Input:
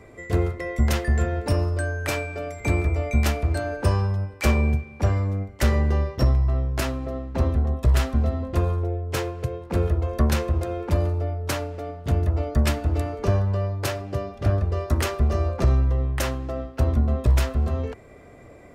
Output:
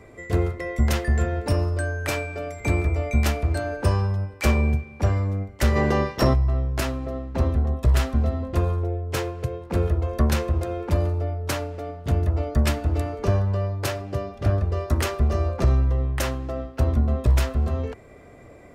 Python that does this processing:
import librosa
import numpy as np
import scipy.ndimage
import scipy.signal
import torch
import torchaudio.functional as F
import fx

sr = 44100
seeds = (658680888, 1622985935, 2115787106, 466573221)

y = fx.spec_clip(x, sr, under_db=18, at=(5.75, 6.33), fade=0.02)